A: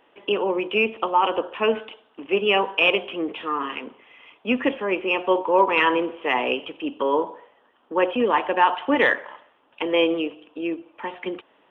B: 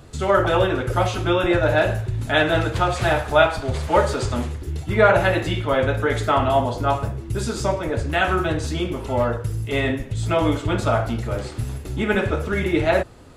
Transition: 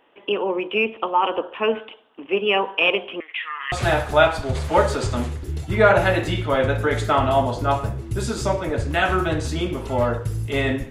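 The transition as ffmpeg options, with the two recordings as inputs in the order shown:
-filter_complex "[0:a]asettb=1/sr,asplit=3[s0][s1][s2];[s0]atrim=end=3.204[s3];[s1]atrim=start=3.2:end=3.72,asetpts=PTS-STARTPTS,afade=t=in:d=0.004:c=qsin,afade=t=out:st=0.516:d=0.004:c=qsin,highpass=f=2000:t=q:w=7[s4];[s2]atrim=start=3.716[s5];[s3][s4]acrossfade=d=0.004:c1=hsin:c2=qsin[s6];[s6][s5]acrossfade=d=0.004:c1=qsin:c2=hsin,apad=whole_dur=10.9,atrim=end=10.9,atrim=end=3.722[s7];[1:a]atrim=start=2.908:end=10.09[s8];[s7][s8]acrossfade=d=0.004:c1=hsin:c2=hsin"

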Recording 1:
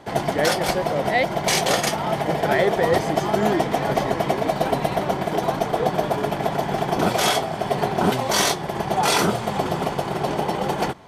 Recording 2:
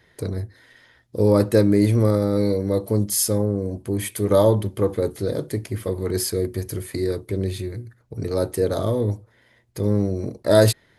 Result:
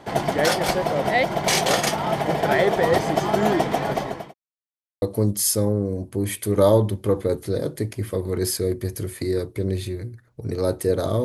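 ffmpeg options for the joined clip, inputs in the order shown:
-filter_complex "[0:a]apad=whole_dur=11.24,atrim=end=11.24,asplit=2[s0][s1];[s0]atrim=end=4.34,asetpts=PTS-STARTPTS,afade=t=out:st=3.55:d=0.79:c=qsin[s2];[s1]atrim=start=4.34:end=5.02,asetpts=PTS-STARTPTS,volume=0[s3];[1:a]atrim=start=2.75:end=8.97,asetpts=PTS-STARTPTS,afade=t=in:d=0.004:c=hsin[s4];[s2][s3][s4]concat=n=3:v=0:a=1"

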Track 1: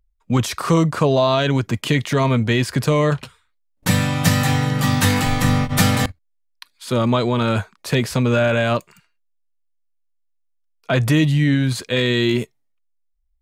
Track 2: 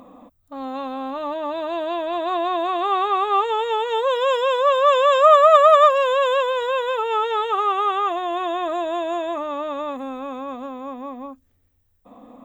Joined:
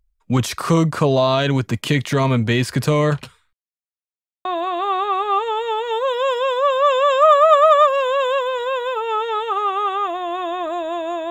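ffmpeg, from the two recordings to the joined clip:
-filter_complex "[0:a]apad=whole_dur=11.3,atrim=end=11.3,asplit=2[s0][s1];[s0]atrim=end=3.53,asetpts=PTS-STARTPTS,afade=t=out:st=3.526:d=0.004:c=hsin[s2];[s1]atrim=start=3.53:end=4.45,asetpts=PTS-STARTPTS,volume=0[s3];[1:a]atrim=start=2.47:end=9.32,asetpts=PTS-STARTPTS,afade=t=in:d=0.004:c=hsin[s4];[s2][s3][s4]concat=n=3:v=0:a=1"

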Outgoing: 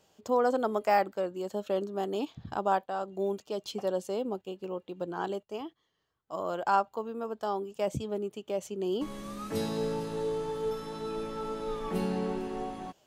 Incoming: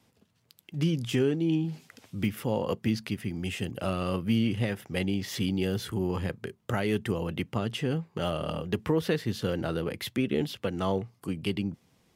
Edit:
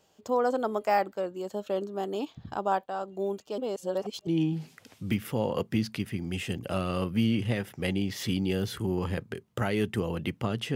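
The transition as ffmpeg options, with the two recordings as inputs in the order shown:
-filter_complex "[0:a]apad=whole_dur=10.75,atrim=end=10.75,asplit=2[s0][s1];[s0]atrim=end=3.582[s2];[s1]atrim=start=3.578:end=4.272,asetpts=PTS-STARTPTS,areverse[s3];[1:a]atrim=start=1.388:end=7.87[s4];[s2][s3]acrossfade=d=0.004:c1=hsin:c2=hsin[s5];[s5][s4]acrossfade=d=0.004:c1=hsin:c2=hsin"

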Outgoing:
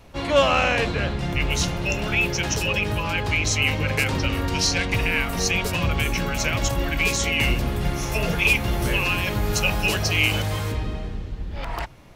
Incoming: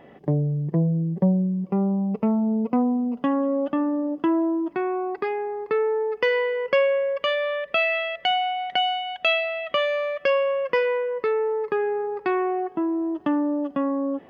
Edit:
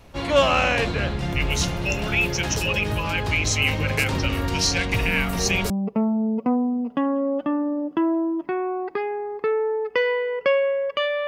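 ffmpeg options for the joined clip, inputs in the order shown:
-filter_complex "[1:a]asplit=2[s0][s1];[0:a]apad=whole_dur=11.27,atrim=end=11.27,atrim=end=5.702[s2];[s1]atrim=start=1.968:end=7.54[s3];[s0]atrim=start=1.35:end=1.97,asetpts=PTS-STARTPTS,volume=0.376,afade=t=in:d=0.004:c=hsin,afade=t=out:st=0.616:d=0.004:c=hsin,adelay=5080[s4];[s2][s3]acrossfade=d=0.004:c1=hsin:c2=hsin[s5];[s5][s4]amix=inputs=2:normalize=0"

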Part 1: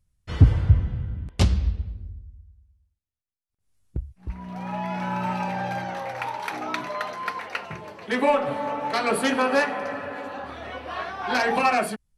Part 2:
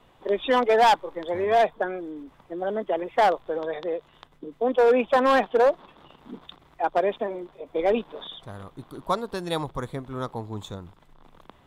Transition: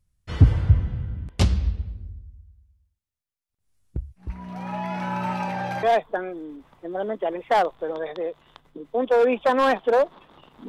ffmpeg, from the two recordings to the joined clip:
-filter_complex "[0:a]apad=whole_dur=10.68,atrim=end=10.68,atrim=end=5.832[s0];[1:a]atrim=start=1.498:end=6.35[s1];[s0][s1]acrossfade=d=0.004:c1=hsin:c2=hsin"

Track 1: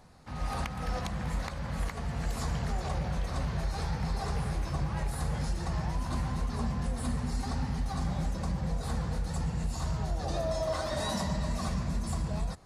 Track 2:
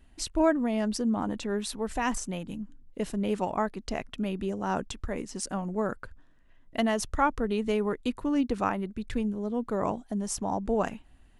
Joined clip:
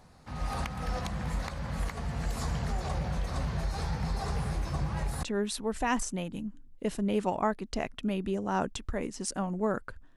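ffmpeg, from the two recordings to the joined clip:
-filter_complex "[0:a]apad=whole_dur=10.16,atrim=end=10.16,atrim=end=5.232[s0];[1:a]atrim=start=1.378:end=6.31[s1];[s0][s1]acrossfade=d=0.004:c1=hsin:c2=hsin"

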